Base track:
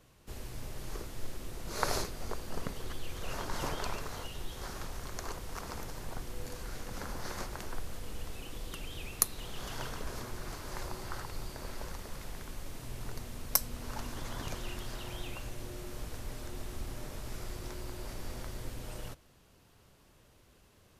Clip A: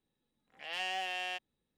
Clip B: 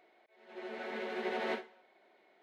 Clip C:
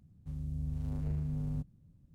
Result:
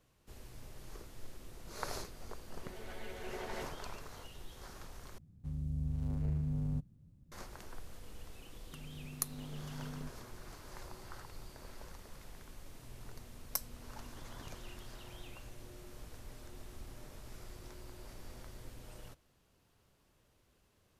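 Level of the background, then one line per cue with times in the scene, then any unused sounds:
base track −9 dB
0:02.08: mix in B −9 dB
0:05.18: overwrite with C
0:08.46: mix in C −4.5 dB + high-pass filter 170 Hz 24 dB per octave
not used: A

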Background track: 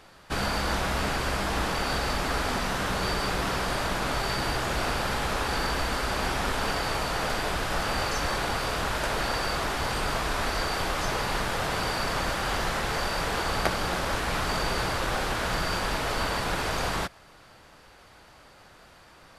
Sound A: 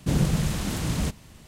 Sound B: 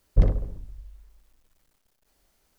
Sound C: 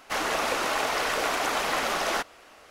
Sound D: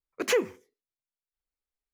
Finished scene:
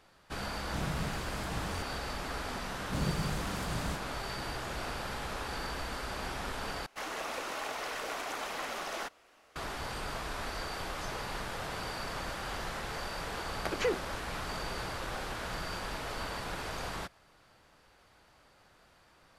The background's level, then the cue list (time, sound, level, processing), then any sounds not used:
background track −10 dB
0:00.67: mix in A −15 dB + buffer that repeats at 0:01.05
0:02.86: mix in A −11 dB
0:06.86: overwrite with C −11 dB
0:13.52: mix in D −6 dB + high-frequency loss of the air 91 metres
not used: B

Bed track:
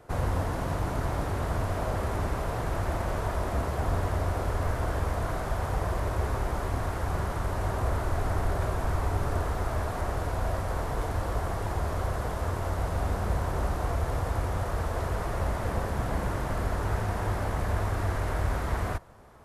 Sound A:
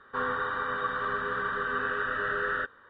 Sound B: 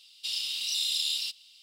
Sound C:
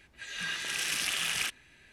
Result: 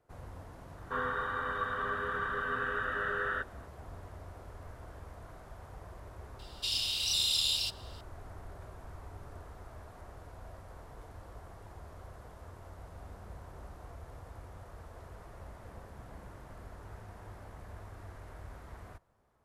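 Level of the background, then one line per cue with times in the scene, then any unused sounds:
bed track −19.5 dB
0:00.77: mix in A −4 dB
0:06.39: mix in B −0.5 dB
not used: C

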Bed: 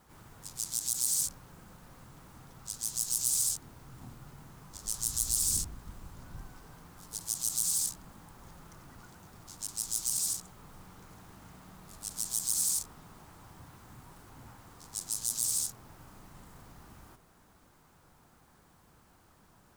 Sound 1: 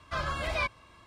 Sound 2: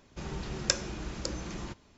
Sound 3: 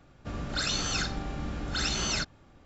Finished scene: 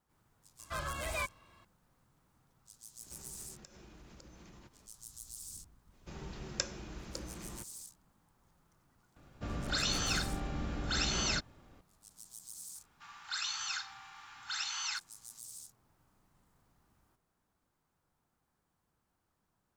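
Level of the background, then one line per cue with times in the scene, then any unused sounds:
bed −18.5 dB
0:00.59: mix in 1 −6.5 dB
0:02.95: mix in 2 −4 dB, fades 0.10 s + downward compressor 10 to 1, threshold −48 dBFS
0:05.90: mix in 2 −8 dB, fades 0.05 s
0:09.16: mix in 3 −3 dB
0:12.75: mix in 3 −6.5 dB + Butterworth high-pass 810 Hz 96 dB per octave

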